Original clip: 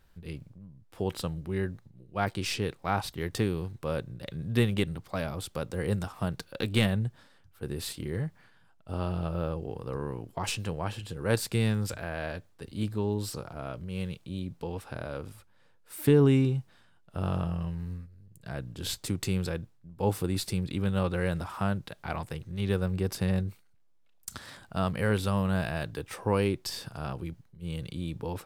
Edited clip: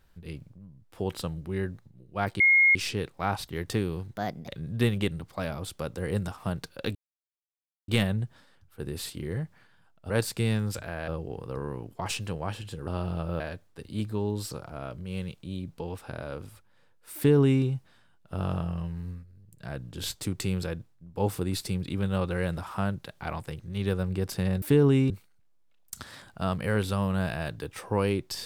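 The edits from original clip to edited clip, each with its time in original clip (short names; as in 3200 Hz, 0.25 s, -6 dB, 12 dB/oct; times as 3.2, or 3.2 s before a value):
2.4 add tone 2150 Hz -16 dBFS 0.35 s
3.79–4.24 speed 132%
6.71 insert silence 0.93 s
8.93–9.46 swap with 11.25–12.23
15.99–16.47 copy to 23.45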